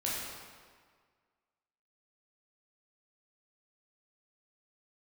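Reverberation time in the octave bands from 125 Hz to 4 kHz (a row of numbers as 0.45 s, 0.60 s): 1.6 s, 1.7 s, 1.7 s, 1.7 s, 1.5 s, 1.3 s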